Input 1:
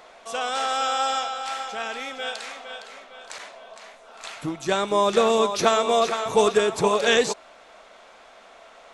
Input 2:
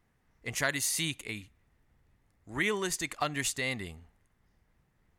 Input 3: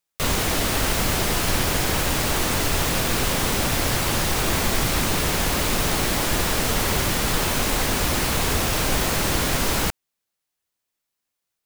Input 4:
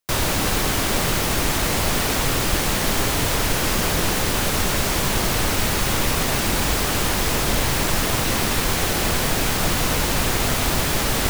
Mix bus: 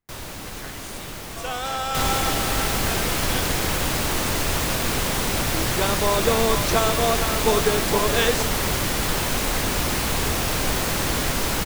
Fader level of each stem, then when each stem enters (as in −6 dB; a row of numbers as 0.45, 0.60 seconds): −2.5, −13.0, −1.5, −14.0 decibels; 1.10, 0.00, 1.75, 0.00 seconds